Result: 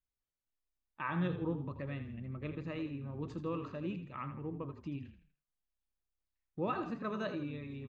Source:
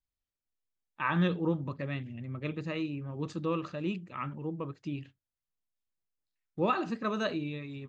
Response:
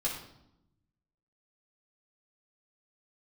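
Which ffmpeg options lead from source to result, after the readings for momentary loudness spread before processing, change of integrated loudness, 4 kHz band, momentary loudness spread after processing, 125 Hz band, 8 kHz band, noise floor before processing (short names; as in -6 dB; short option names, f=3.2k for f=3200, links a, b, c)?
10 LU, -6.0 dB, -10.5 dB, 8 LU, -5.0 dB, n/a, under -85 dBFS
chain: -filter_complex "[0:a]highshelf=f=3.7k:g=-11,asplit=2[a][b];[b]acompressor=threshold=-39dB:ratio=6,volume=0.5dB[c];[a][c]amix=inputs=2:normalize=0,asplit=5[d][e][f][g][h];[e]adelay=81,afreqshift=-33,volume=-10dB[i];[f]adelay=162,afreqshift=-66,volume=-17.7dB[j];[g]adelay=243,afreqshift=-99,volume=-25.5dB[k];[h]adelay=324,afreqshift=-132,volume=-33.2dB[l];[d][i][j][k][l]amix=inputs=5:normalize=0,volume=-8.5dB"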